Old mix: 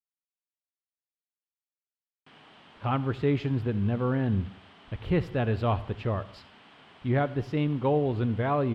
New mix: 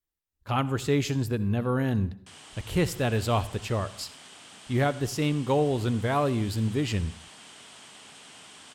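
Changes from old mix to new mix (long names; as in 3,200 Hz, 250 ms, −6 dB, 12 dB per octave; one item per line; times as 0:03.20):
speech: entry −2.35 s
master: remove high-frequency loss of the air 380 metres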